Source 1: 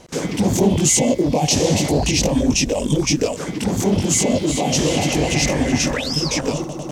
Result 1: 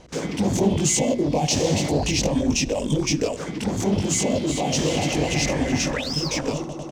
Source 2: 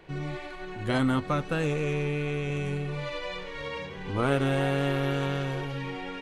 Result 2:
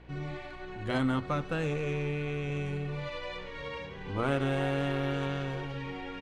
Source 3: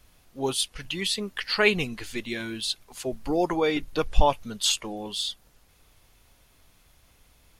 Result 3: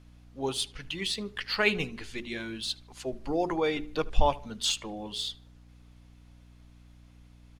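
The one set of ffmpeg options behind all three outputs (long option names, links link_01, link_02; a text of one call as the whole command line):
ffmpeg -i in.wav -filter_complex "[0:a]bandreject=frequency=60:width_type=h:width=6,bandreject=frequency=120:width_type=h:width=6,bandreject=frequency=180:width_type=h:width=6,bandreject=frequency=240:width_type=h:width=6,bandreject=frequency=300:width_type=h:width=6,bandreject=frequency=360:width_type=h:width=6,bandreject=frequency=420:width_type=h:width=6,aeval=exprs='val(0)+0.00355*(sin(2*PI*60*n/s)+sin(2*PI*2*60*n/s)/2+sin(2*PI*3*60*n/s)/3+sin(2*PI*4*60*n/s)/4+sin(2*PI*5*60*n/s)/5)':channel_layout=same,adynamicsmooth=sensitivity=3.5:basefreq=7800,asplit=2[link_01][link_02];[link_02]adelay=76,lowpass=frequency=3300:poles=1,volume=-21dB,asplit=2[link_03][link_04];[link_04]adelay=76,lowpass=frequency=3300:poles=1,volume=0.44,asplit=2[link_05][link_06];[link_06]adelay=76,lowpass=frequency=3300:poles=1,volume=0.44[link_07];[link_03][link_05][link_07]amix=inputs=3:normalize=0[link_08];[link_01][link_08]amix=inputs=2:normalize=0,volume=-3.5dB" out.wav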